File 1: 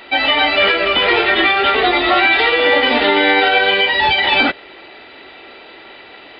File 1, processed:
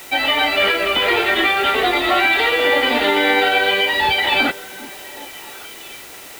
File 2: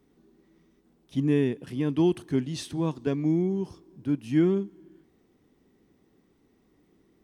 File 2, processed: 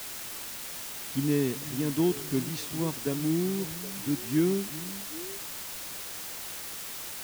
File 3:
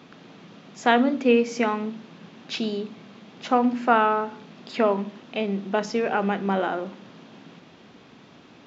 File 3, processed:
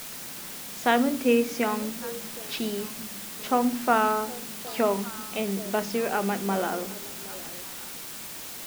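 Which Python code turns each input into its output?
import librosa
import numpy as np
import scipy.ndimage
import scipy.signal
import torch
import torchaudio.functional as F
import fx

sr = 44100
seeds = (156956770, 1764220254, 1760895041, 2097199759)

y = fx.quant_dither(x, sr, seeds[0], bits=6, dither='triangular')
y = fx.echo_stepped(y, sr, ms=384, hz=180.0, octaves=1.4, feedback_pct=70, wet_db=-11.5)
y = F.gain(torch.from_numpy(y), -3.0).numpy()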